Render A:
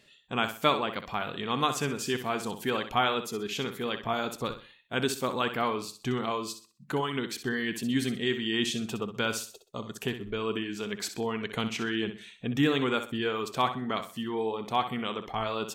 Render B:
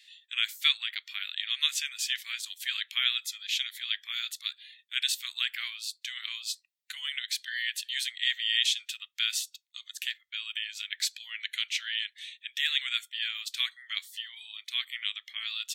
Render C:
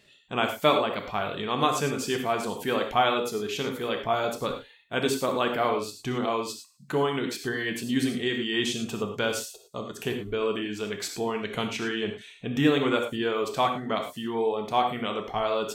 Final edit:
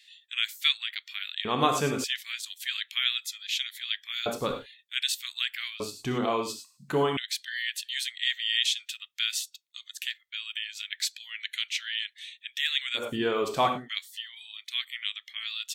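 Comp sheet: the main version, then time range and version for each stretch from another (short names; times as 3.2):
B
1.45–2.04 from C
4.26–4.66 from C
5.8–7.17 from C
13.02–13.81 from C, crossfade 0.16 s
not used: A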